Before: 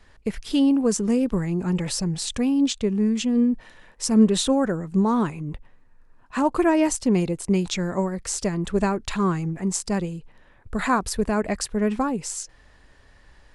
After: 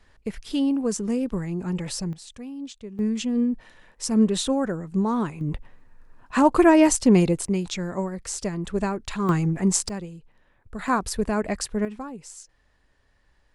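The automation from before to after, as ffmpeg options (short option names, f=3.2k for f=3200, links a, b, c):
-af "asetnsamples=n=441:p=0,asendcmd='2.13 volume volume -15dB;2.99 volume volume -3dB;5.41 volume volume 4dB;7.46 volume volume -3.5dB;9.29 volume volume 4dB;9.89 volume volume -8dB;10.88 volume volume -1.5dB;11.85 volume volume -11.5dB',volume=-4dB"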